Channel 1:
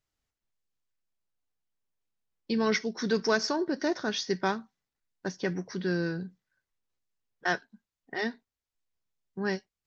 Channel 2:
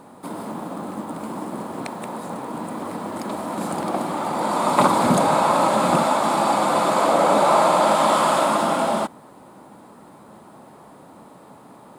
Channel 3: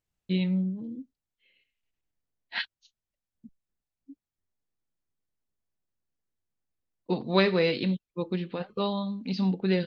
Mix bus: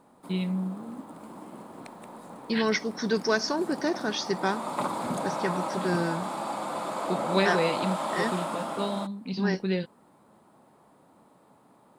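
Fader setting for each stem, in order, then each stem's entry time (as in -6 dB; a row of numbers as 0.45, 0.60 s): +1.0, -13.5, -2.5 dB; 0.00, 0.00, 0.00 s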